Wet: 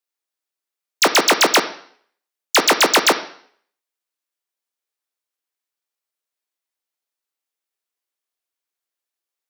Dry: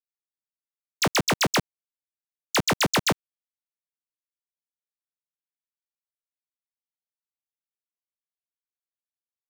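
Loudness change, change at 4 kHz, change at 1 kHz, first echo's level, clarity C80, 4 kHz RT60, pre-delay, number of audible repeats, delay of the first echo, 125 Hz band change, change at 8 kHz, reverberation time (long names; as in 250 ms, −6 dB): +9.0 dB, +9.5 dB, +9.5 dB, no echo audible, 15.5 dB, 0.55 s, 22 ms, no echo audible, no echo audible, −12.0 dB, +9.0 dB, 0.55 s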